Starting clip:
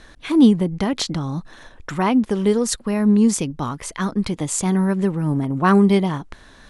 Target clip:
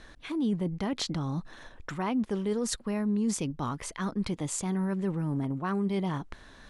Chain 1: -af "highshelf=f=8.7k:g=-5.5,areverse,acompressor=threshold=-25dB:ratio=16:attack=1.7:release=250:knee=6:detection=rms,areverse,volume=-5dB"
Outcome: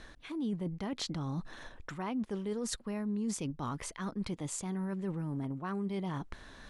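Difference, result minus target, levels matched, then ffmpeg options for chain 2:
compressor: peak gain reduction +6.5 dB
-af "highshelf=f=8.7k:g=-5.5,areverse,acompressor=threshold=-18dB:ratio=16:attack=1.7:release=250:knee=6:detection=rms,areverse,volume=-5dB"

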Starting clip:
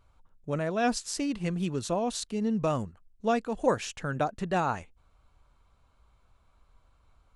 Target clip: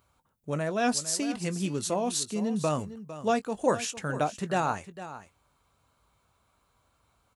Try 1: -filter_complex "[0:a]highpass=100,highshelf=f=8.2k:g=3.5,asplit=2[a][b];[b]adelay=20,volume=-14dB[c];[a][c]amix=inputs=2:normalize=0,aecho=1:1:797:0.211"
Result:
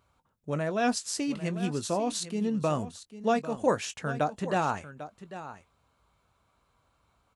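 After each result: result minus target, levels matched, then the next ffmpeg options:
echo 0.342 s late; 8000 Hz band -4.0 dB
-filter_complex "[0:a]highpass=100,highshelf=f=8.2k:g=3.5,asplit=2[a][b];[b]adelay=20,volume=-14dB[c];[a][c]amix=inputs=2:normalize=0,aecho=1:1:455:0.211"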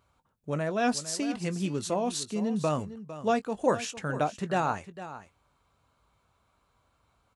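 8000 Hz band -4.0 dB
-filter_complex "[0:a]highpass=100,highshelf=f=8.2k:g=14,asplit=2[a][b];[b]adelay=20,volume=-14dB[c];[a][c]amix=inputs=2:normalize=0,aecho=1:1:455:0.211"

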